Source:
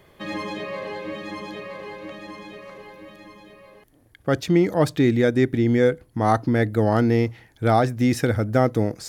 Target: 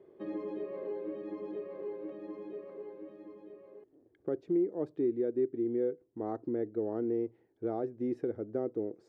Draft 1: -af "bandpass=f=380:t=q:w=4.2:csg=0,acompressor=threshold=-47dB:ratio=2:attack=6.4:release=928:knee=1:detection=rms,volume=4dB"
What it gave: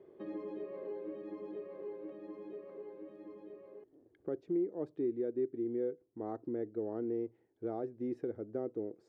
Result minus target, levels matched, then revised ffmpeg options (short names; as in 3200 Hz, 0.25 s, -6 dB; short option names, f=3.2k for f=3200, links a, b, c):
compressor: peak gain reduction +4 dB
-af "bandpass=f=380:t=q:w=4.2:csg=0,acompressor=threshold=-39dB:ratio=2:attack=6.4:release=928:knee=1:detection=rms,volume=4dB"